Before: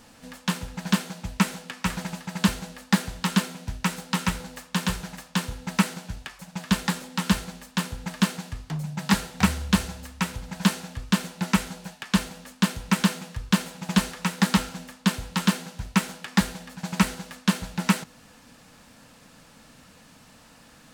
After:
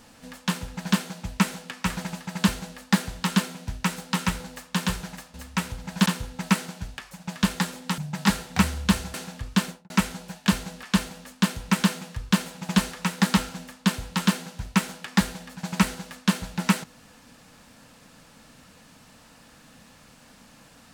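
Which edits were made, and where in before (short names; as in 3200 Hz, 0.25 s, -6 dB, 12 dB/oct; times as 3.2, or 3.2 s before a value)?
2.43–2.79 copy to 12.03
7.26–8.82 cut
9.98–10.7 move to 5.34
11.21–11.46 studio fade out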